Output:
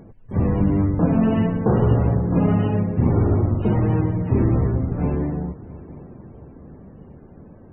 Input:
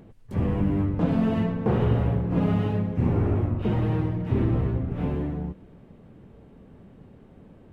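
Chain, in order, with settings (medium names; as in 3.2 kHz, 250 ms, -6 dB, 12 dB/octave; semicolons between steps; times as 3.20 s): multi-head delay 226 ms, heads first and third, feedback 66%, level -21.5 dB; loudest bins only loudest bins 64; trim +5 dB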